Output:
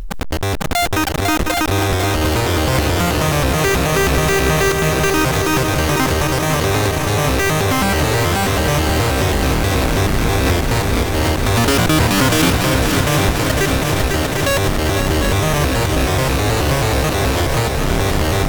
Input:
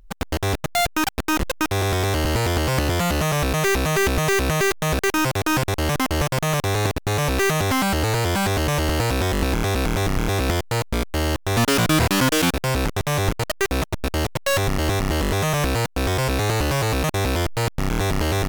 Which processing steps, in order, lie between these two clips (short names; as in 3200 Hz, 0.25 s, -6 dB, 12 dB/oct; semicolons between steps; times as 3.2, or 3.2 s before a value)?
multi-head echo 0.25 s, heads second and third, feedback 68%, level -7.5 dB; backwards sustainer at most 31 dB/s; gain +3 dB